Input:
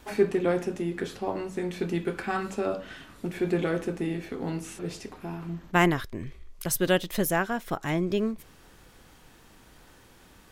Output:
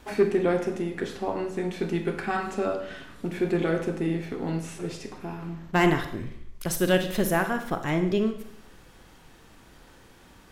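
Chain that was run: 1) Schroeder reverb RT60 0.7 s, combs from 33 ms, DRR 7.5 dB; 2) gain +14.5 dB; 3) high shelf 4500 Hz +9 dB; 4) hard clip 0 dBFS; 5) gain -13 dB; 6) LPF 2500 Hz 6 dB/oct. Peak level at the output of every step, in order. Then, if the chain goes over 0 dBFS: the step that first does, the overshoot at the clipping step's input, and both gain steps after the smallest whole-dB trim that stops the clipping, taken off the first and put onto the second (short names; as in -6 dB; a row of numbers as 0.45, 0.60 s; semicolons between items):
-8.5, +6.0, +8.0, 0.0, -13.0, -13.0 dBFS; step 2, 8.0 dB; step 2 +6.5 dB, step 5 -5 dB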